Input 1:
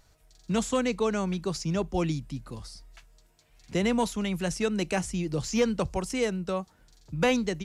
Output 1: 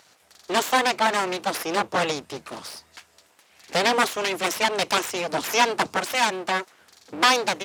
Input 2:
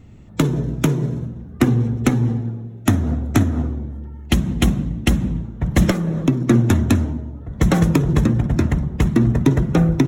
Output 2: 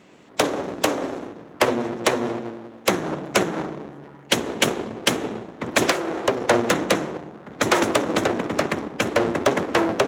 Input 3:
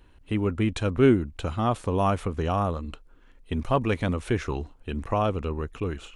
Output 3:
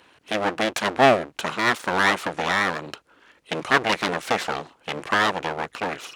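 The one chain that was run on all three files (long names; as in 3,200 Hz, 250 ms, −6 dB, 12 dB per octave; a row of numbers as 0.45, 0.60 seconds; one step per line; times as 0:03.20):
full-wave rectification
meter weighting curve A
loudness normalisation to −23 LKFS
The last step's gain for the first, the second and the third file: +12.0, +6.0, +10.5 decibels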